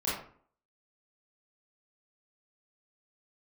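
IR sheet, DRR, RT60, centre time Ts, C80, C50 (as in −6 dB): −9.5 dB, 0.50 s, 53 ms, 6.0 dB, 1.0 dB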